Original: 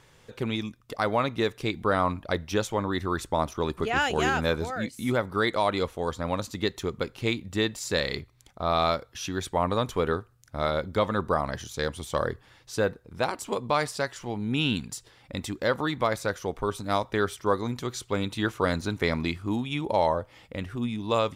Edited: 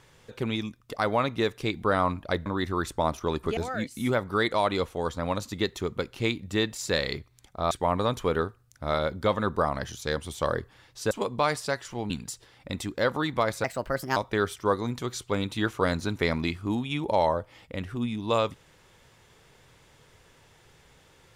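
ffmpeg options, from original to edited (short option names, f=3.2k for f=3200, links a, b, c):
-filter_complex "[0:a]asplit=8[a][b][c][d][e][f][g][h];[a]atrim=end=2.462[i];[b]atrim=start=2.798:end=3.912[j];[c]atrim=start=4.588:end=8.732[k];[d]atrim=start=9.428:end=12.832[l];[e]atrim=start=13.418:end=14.412[m];[f]atrim=start=14.738:end=16.284[n];[g]atrim=start=16.28:end=16.97,asetpts=PTS-STARTPTS,asetrate=58212,aresample=44100,atrim=end_sample=23052,asetpts=PTS-STARTPTS[o];[h]atrim=start=16.966[p];[i][j]acrossfade=d=0.004:c1=hsin:c2=hsin[q];[q][k]acrossfade=d=0.004:c1=hsin:c2=hsin[r];[r][l]acrossfade=d=0.004:c1=hsin:c2=hsin[s];[s][m]acrossfade=d=0.004:c1=hsin:c2=hsin[t];[t][n]acrossfade=d=0.004:c1=hsin:c2=hsin[u];[u][o]acrossfade=d=0.004:c1=hsin:c2=hsin[v];[v][p]acrossfade=d=0.004:c1=hsin:c2=hsin"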